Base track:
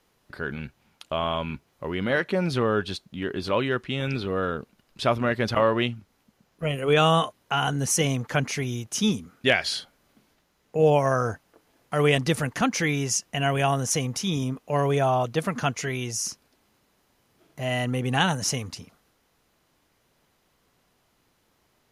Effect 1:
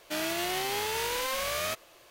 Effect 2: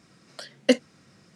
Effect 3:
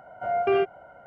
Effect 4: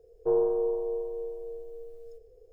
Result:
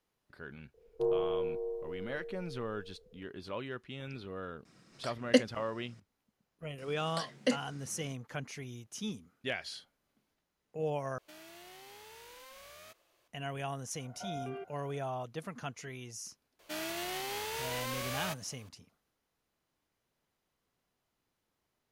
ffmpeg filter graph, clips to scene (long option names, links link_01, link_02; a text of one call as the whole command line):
ffmpeg -i bed.wav -i cue0.wav -i cue1.wav -i cue2.wav -i cue3.wav -filter_complex "[2:a]asplit=2[link_01][link_02];[1:a]asplit=2[link_03][link_04];[0:a]volume=-15.5dB[link_05];[4:a]equalizer=frequency=180:width=0.9:gain=9[link_06];[link_02]alimiter=level_in=16dB:limit=-1dB:release=50:level=0:latency=1[link_07];[link_03]acompressor=threshold=-34dB:ratio=6:attack=3.2:release=140:knee=1:detection=peak[link_08];[3:a]alimiter=level_in=0.5dB:limit=-24dB:level=0:latency=1:release=14,volume=-0.5dB[link_09];[link_05]asplit=2[link_10][link_11];[link_10]atrim=end=11.184[link_12];[link_08]atrim=end=2.1,asetpts=PTS-STARTPTS,volume=-16dB[link_13];[link_11]atrim=start=13.276[link_14];[link_06]atrim=end=2.52,asetpts=PTS-STARTPTS,volume=-8dB,afade=type=in:duration=0.004:curve=hsin,afade=type=out:start_time=2.516:duration=0.004:curve=hsin,adelay=740[link_15];[link_01]atrim=end=1.35,asetpts=PTS-STARTPTS,volume=-5dB,afade=type=in:duration=0.004:curve=hsin,afade=type=out:start_time=1.346:duration=0.004:curve=hsin,adelay=205065S[link_16];[link_07]atrim=end=1.35,asetpts=PTS-STARTPTS,volume=-16dB,afade=type=in:duration=0.004:curve=hsin,afade=type=out:start_time=1.346:duration=0.004:curve=hsin,adelay=6780[link_17];[link_09]atrim=end=1.06,asetpts=PTS-STARTPTS,volume=-12dB,afade=type=in:duration=0.004:curve=hsin,afade=type=out:start_time=1.056:duration=0.004:curve=hsin,adelay=13990[link_18];[link_04]atrim=end=2.1,asetpts=PTS-STARTPTS,volume=-7dB,afade=type=in:duration=0.004:curve=hsin,afade=type=out:start_time=2.096:duration=0.004:curve=hsin,adelay=16590[link_19];[link_12][link_13]acrossfade=duration=0.004:curve1=hsin:curve2=hsin[link_20];[link_20][link_14]acrossfade=duration=0.004:curve1=hsin:curve2=hsin[link_21];[link_21][link_15][link_16][link_17][link_18][link_19]amix=inputs=6:normalize=0" out.wav